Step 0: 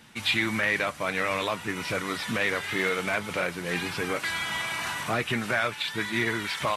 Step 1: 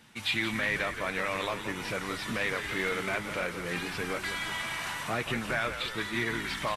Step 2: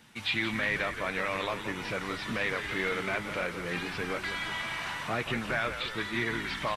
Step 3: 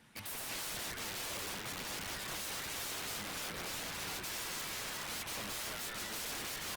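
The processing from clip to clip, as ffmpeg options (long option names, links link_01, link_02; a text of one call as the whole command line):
ffmpeg -i in.wav -filter_complex "[0:a]asplit=9[link_01][link_02][link_03][link_04][link_05][link_06][link_07][link_08][link_09];[link_02]adelay=174,afreqshift=-80,volume=-9.5dB[link_10];[link_03]adelay=348,afreqshift=-160,volume=-13.8dB[link_11];[link_04]adelay=522,afreqshift=-240,volume=-18.1dB[link_12];[link_05]adelay=696,afreqshift=-320,volume=-22.4dB[link_13];[link_06]adelay=870,afreqshift=-400,volume=-26.7dB[link_14];[link_07]adelay=1044,afreqshift=-480,volume=-31dB[link_15];[link_08]adelay=1218,afreqshift=-560,volume=-35.3dB[link_16];[link_09]adelay=1392,afreqshift=-640,volume=-39.6dB[link_17];[link_01][link_10][link_11][link_12][link_13][link_14][link_15][link_16][link_17]amix=inputs=9:normalize=0,volume=-4.5dB" out.wav
ffmpeg -i in.wav -filter_complex "[0:a]acrossover=split=5400[link_01][link_02];[link_02]acompressor=threshold=-55dB:ratio=4:attack=1:release=60[link_03];[link_01][link_03]amix=inputs=2:normalize=0" out.wav
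ffmpeg -i in.wav -af "aeval=exprs='(mod(39.8*val(0)+1,2)-1)/39.8':channel_layout=same,volume=-4dB" -ar 48000 -c:a libopus -b:a 32k out.opus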